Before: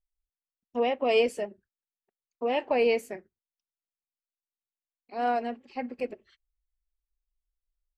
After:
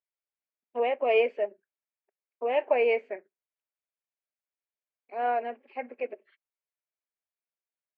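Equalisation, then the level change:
loudspeaker in its box 360–2,900 Hz, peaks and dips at 410 Hz +6 dB, 610 Hz +9 dB, 940 Hz +3 dB, 1,600 Hz +4 dB, 2,300 Hz +7 dB
−4.0 dB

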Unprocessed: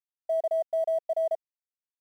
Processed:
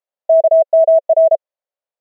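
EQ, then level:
high-pass with resonance 570 Hz, resonance Q 5.4
low-pass filter 1,700 Hz 6 dB per octave
+6.5 dB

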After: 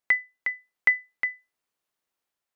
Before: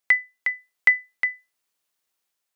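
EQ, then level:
high-shelf EQ 2,400 Hz −9 dB
0.0 dB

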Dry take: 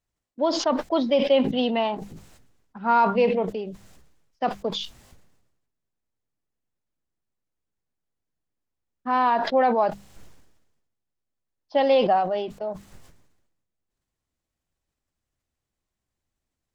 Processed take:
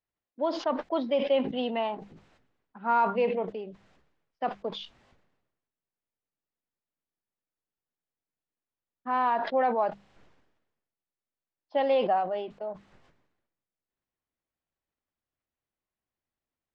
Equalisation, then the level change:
low-pass filter 3,000 Hz 12 dB per octave
low-shelf EQ 160 Hz −11 dB
−4.5 dB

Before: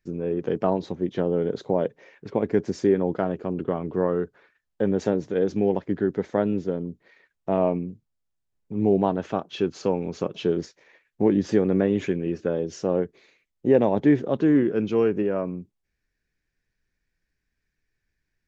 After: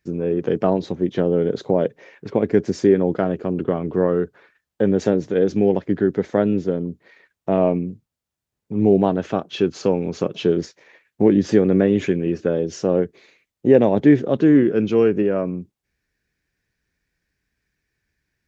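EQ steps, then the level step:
high-pass filter 49 Hz
dynamic equaliser 940 Hz, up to −5 dB, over −39 dBFS, Q 2
+5.5 dB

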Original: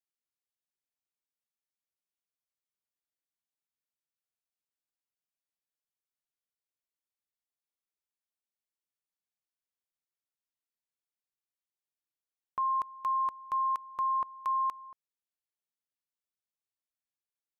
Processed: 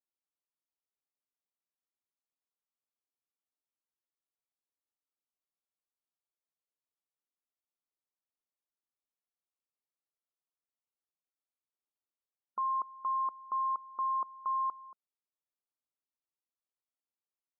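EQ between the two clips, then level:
linear-phase brick-wall band-pass 200–1,400 Hz
−2.5 dB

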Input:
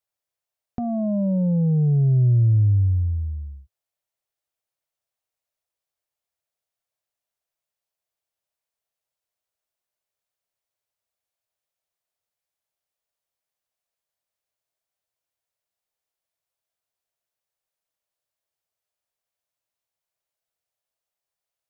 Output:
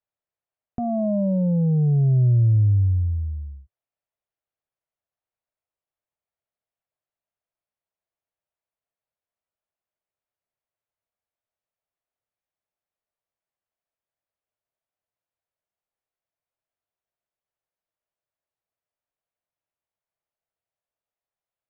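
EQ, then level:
dynamic equaliser 650 Hz, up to +6 dB, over −43 dBFS, Q 2.4
high-frequency loss of the air 470 metres
0.0 dB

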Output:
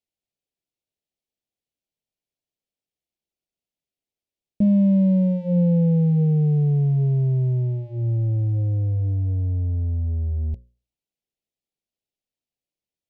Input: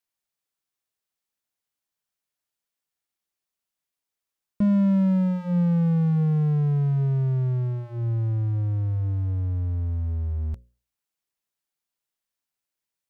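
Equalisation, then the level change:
low-pass filter 1,800 Hz 6 dB per octave
dynamic equaliser 520 Hz, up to +8 dB, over −53 dBFS, Q 5.6
Butterworth band-reject 1,300 Hz, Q 0.72
+3.0 dB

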